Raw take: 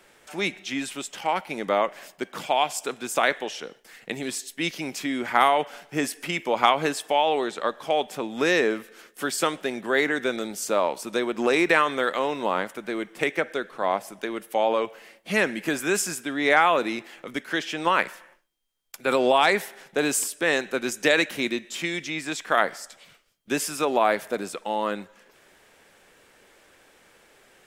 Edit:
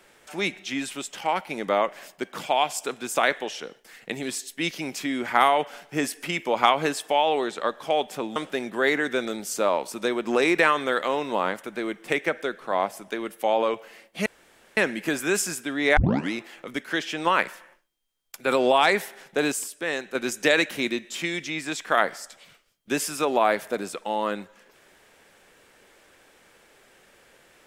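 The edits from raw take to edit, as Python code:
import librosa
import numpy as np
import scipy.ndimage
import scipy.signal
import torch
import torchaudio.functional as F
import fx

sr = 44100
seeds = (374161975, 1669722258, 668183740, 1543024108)

y = fx.edit(x, sr, fx.cut(start_s=8.36, length_s=1.11),
    fx.insert_room_tone(at_s=15.37, length_s=0.51),
    fx.tape_start(start_s=16.57, length_s=0.35),
    fx.clip_gain(start_s=20.12, length_s=0.63, db=-5.5), tone=tone)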